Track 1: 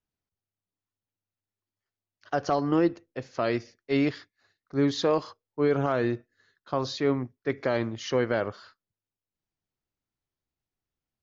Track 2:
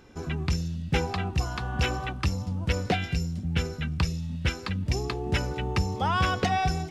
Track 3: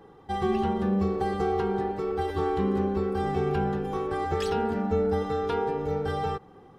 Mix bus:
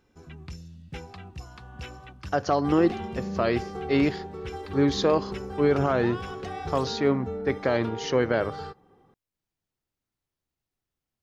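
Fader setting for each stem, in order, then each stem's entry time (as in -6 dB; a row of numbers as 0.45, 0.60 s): +2.0, -13.5, -8.5 dB; 0.00, 0.00, 2.35 s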